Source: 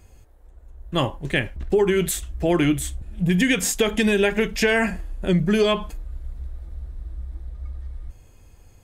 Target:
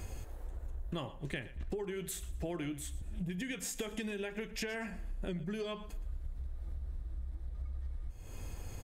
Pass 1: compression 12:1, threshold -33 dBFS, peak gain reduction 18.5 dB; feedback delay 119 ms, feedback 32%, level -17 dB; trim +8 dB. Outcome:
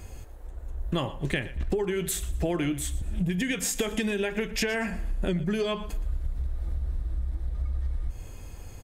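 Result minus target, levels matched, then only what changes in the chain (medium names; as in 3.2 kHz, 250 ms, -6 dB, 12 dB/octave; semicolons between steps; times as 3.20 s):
compression: peak gain reduction -11 dB
change: compression 12:1, threshold -45 dBFS, peak gain reduction 29.5 dB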